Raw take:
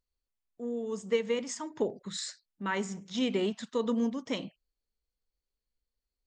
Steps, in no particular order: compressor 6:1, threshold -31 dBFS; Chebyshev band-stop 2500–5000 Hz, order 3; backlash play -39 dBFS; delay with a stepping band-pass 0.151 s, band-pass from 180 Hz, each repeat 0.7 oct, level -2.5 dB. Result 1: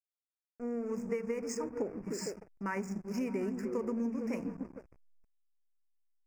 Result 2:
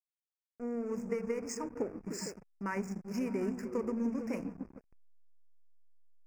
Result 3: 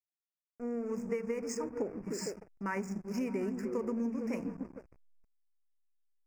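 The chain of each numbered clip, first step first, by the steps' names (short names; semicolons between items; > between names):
delay with a stepping band-pass > backlash > compressor > Chebyshev band-stop; compressor > delay with a stepping band-pass > backlash > Chebyshev band-stop; delay with a stepping band-pass > backlash > Chebyshev band-stop > compressor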